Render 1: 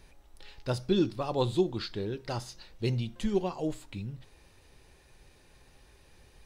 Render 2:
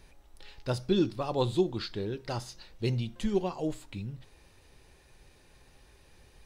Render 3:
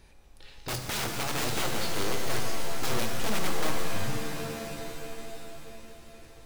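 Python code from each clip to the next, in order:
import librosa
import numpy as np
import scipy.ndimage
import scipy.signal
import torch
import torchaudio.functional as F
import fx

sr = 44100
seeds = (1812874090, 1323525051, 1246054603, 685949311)

y1 = x
y2 = (np.mod(10.0 ** (27.5 / 20.0) * y1 + 1.0, 2.0) - 1.0) / 10.0 ** (27.5 / 20.0)
y2 = fx.rev_shimmer(y2, sr, seeds[0], rt60_s=3.6, semitones=7, shimmer_db=-2, drr_db=2.5)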